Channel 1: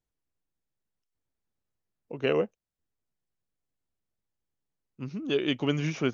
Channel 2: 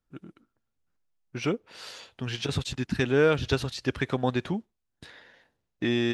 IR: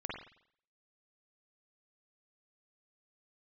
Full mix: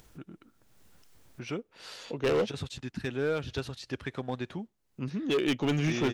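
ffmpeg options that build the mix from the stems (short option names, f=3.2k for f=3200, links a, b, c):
-filter_complex "[0:a]volume=2dB[a];[1:a]highpass=42,adelay=50,volume=-8dB[b];[a][b]amix=inputs=2:normalize=0,acompressor=mode=upward:threshold=-37dB:ratio=2.5,asoftclip=type=hard:threshold=-22.5dB"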